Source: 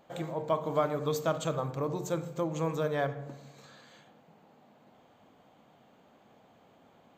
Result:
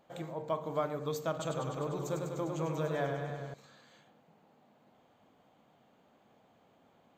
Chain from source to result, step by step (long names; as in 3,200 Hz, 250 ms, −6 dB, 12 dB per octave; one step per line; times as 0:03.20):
0:01.29–0:03.54: feedback echo with a swinging delay time 100 ms, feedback 76%, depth 61 cents, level −5.5 dB
level −5 dB